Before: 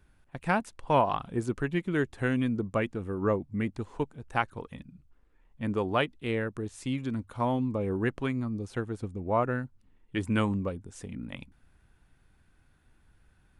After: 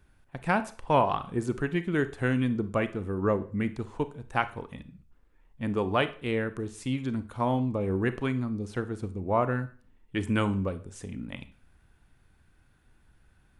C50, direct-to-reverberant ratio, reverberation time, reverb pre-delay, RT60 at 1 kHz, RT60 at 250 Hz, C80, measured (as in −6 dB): 15.5 dB, 12.0 dB, 0.40 s, 29 ms, 0.40 s, 0.45 s, 20.0 dB